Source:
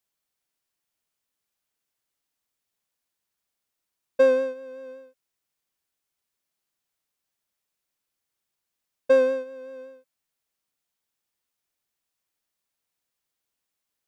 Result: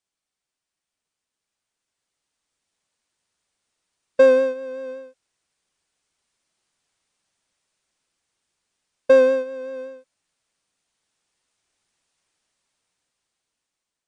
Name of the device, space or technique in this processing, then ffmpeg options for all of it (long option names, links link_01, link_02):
low-bitrate web radio: -af "dynaudnorm=framelen=630:gausssize=7:maxgain=13.5dB,alimiter=limit=-5dB:level=0:latency=1:release=423" -ar 22050 -c:a libmp3lame -b:a 48k